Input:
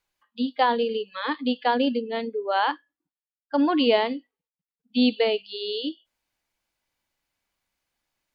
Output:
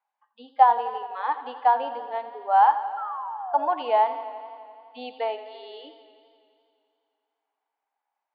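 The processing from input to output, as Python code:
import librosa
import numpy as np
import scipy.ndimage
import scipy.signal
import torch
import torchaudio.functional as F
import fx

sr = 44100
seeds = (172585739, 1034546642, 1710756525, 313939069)

y = fx.ladder_bandpass(x, sr, hz=890.0, resonance_pct=70)
y = fx.spec_paint(y, sr, seeds[0], shape='fall', start_s=2.97, length_s=0.72, low_hz=570.0, high_hz=1400.0, level_db=-43.0)
y = fx.echo_warbled(y, sr, ms=85, feedback_pct=78, rate_hz=2.8, cents=58, wet_db=-14.0)
y = F.gain(torch.from_numpy(y), 9.0).numpy()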